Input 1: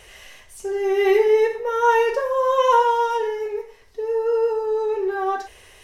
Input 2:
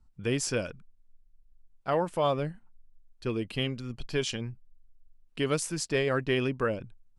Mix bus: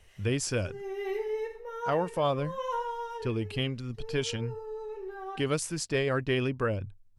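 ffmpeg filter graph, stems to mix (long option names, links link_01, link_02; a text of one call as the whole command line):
ffmpeg -i stem1.wav -i stem2.wav -filter_complex "[0:a]volume=-16.5dB[link_01];[1:a]equalizer=frequency=96:width_type=o:width=0.35:gain=14,volume=-1dB,asplit=2[link_02][link_03];[link_03]apad=whole_len=257383[link_04];[link_01][link_04]sidechaincompress=threshold=-32dB:ratio=8:attack=16:release=296[link_05];[link_05][link_02]amix=inputs=2:normalize=0" out.wav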